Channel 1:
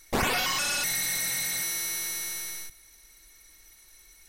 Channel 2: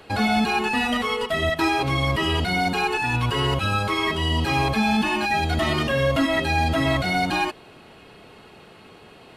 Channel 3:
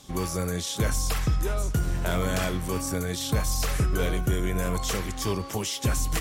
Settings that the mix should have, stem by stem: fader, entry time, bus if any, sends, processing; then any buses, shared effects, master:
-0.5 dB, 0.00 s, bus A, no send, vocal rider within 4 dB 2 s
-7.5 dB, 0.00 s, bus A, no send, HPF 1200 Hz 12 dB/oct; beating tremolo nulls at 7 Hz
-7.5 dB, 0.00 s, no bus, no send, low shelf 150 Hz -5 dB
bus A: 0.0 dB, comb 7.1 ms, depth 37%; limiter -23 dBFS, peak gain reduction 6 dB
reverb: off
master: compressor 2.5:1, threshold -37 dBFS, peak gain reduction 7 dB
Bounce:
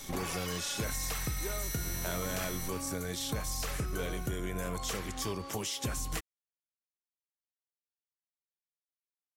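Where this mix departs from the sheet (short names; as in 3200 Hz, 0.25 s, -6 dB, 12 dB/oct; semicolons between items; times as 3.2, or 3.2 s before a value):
stem 1 -0.5 dB -> +7.0 dB; stem 2: muted; stem 3 -7.5 dB -> +2.5 dB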